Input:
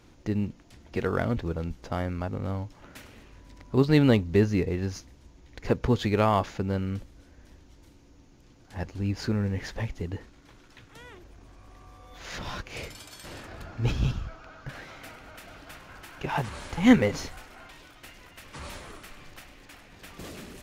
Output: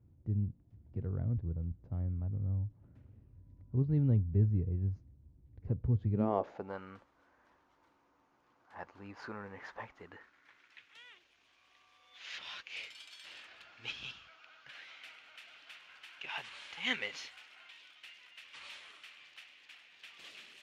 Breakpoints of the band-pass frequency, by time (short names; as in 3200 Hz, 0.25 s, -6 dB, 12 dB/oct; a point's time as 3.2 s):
band-pass, Q 2.1
6.1 s 100 Hz
6.31 s 390 Hz
6.78 s 1100 Hz
9.85 s 1100 Hz
11.03 s 2900 Hz